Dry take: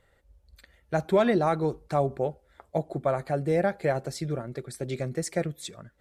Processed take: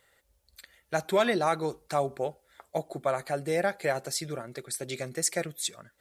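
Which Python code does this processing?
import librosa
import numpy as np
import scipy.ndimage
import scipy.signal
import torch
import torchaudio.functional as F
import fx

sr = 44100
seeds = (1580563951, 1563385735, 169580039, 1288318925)

y = fx.tilt_eq(x, sr, slope=3.0)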